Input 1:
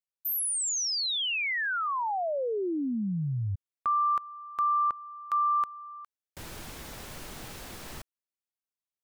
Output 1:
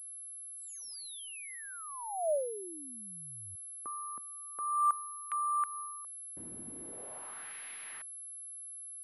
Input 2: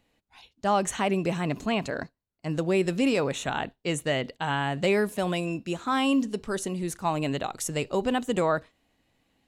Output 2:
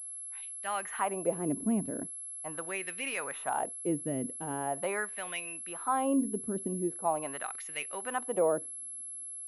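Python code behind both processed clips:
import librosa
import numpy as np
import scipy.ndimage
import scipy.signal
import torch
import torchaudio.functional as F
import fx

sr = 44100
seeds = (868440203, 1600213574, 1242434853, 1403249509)

y = fx.wah_lfo(x, sr, hz=0.42, low_hz=240.0, high_hz=2200.0, q=2.0)
y = fx.dynamic_eq(y, sr, hz=3600.0, q=1.3, threshold_db=-52.0, ratio=4.0, max_db=-3)
y = fx.pwm(y, sr, carrier_hz=11000.0)
y = y * librosa.db_to_amplitude(1.5)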